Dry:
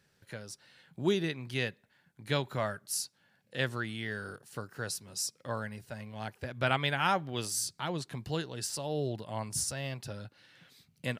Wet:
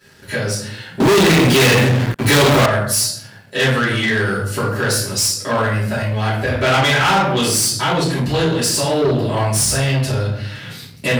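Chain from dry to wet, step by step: shoebox room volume 99 m³, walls mixed, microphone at 2.9 m; in parallel at +0.5 dB: compressor 5:1, threshold -31 dBFS, peak gain reduction 19 dB; on the sum: bell 140 Hz -5 dB 0.54 oct; 1–2.66 sample leveller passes 5; soft clip -15 dBFS, distortion -7 dB; sample leveller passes 1; HPF 47 Hz; gain +4.5 dB

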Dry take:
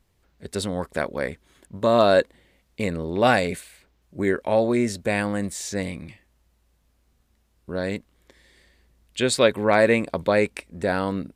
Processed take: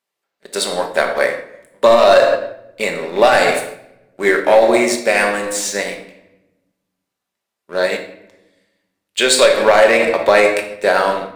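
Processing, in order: HPF 550 Hz 12 dB/oct; sample leveller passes 2; shoebox room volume 480 m³, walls mixed, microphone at 1.2 m; maximiser +7.5 dB; upward expander 1.5:1, over -29 dBFS

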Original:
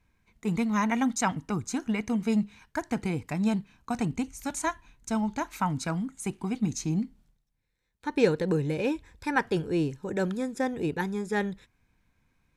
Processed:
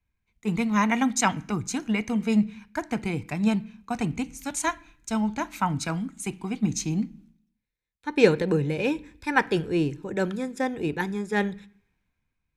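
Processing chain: bell 2700 Hz +4 dB 1 oct; on a send at -15 dB: reverb RT60 0.70 s, pre-delay 3 ms; on the sum: three-band expander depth 40%; gain +2 dB

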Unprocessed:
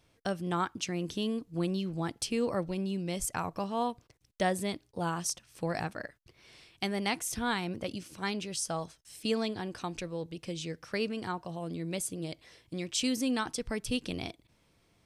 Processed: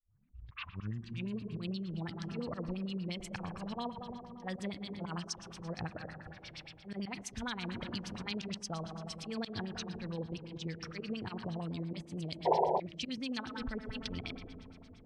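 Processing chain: tape start at the beginning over 1.43 s; auto swell 0.194 s; passive tone stack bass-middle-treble 5-5-5; AGC gain up to 15.5 dB; auto swell 0.122 s; low shelf 370 Hz +10.5 dB; on a send: thinning echo 0.162 s, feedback 43%, level -14.5 dB; on the sum: digital reverb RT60 3.1 s, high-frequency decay 0.3×, pre-delay 20 ms, DRR 10 dB; compressor 12:1, threshold -33 dBFS, peak gain reduction 12.5 dB; painted sound noise, 12.45–12.8, 350–1000 Hz -28 dBFS; LFO low-pass sine 8.7 Hz 430–5600 Hz; gain -3 dB

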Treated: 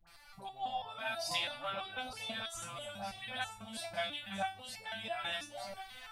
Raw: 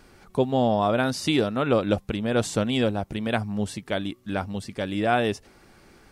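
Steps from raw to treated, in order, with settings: spectral gain 2.4–2.91, 220–5500 Hz -16 dB; dispersion highs, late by 71 ms, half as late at 800 Hz; compressor 2:1, threshold -43 dBFS, peak gain reduction 14.5 dB; EQ curve 100 Hz 0 dB, 400 Hz -22 dB, 710 Hz +5 dB, 1200 Hz +3 dB, 2200 Hz +8 dB, 4200 Hz +10 dB, 6800 Hz +2 dB, 10000 Hz +8 dB; echo with dull and thin repeats by turns 0.456 s, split 930 Hz, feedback 63%, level -3.5 dB; AGC gain up to 5.5 dB; stepped resonator 6.1 Hz 170–440 Hz; gain +4.5 dB

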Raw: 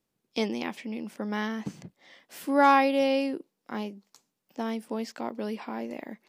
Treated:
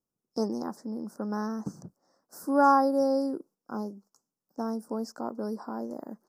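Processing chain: elliptic band-stop 1400–5200 Hz, stop band 60 dB; gate -55 dBFS, range -8 dB; spectral gain 3.55–3.79, 1600–4300 Hz -16 dB

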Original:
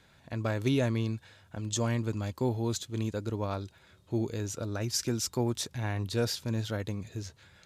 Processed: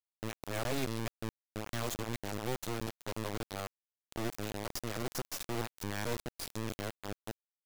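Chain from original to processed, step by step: local time reversal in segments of 0.216 s; half-wave rectifier; bit-crush 5-bit; gain -5 dB

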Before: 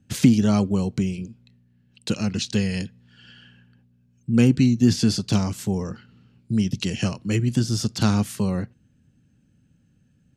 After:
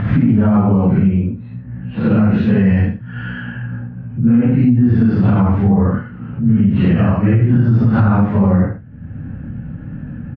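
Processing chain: phase scrambler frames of 0.2 s; upward compressor, threshold -29 dBFS; LPF 1700 Hz 24 dB/oct; bell 380 Hz -6.5 dB 0.61 oct; echo 76 ms -12.5 dB; compressor 6:1, threshold -23 dBFS, peak gain reduction 12 dB; maximiser +21.5 dB; gain -4 dB

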